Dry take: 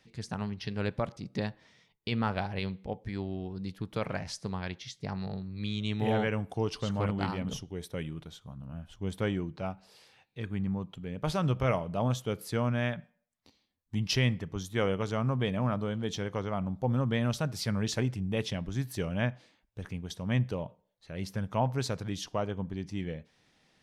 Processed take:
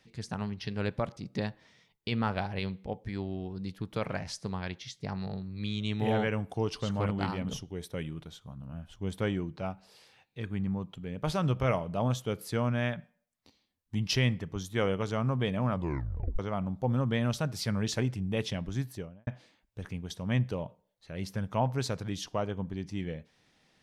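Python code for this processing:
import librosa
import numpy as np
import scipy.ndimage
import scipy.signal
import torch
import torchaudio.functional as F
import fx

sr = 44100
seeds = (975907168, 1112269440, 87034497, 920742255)

y = fx.studio_fade_out(x, sr, start_s=18.74, length_s=0.53)
y = fx.edit(y, sr, fx.tape_stop(start_s=15.72, length_s=0.67), tone=tone)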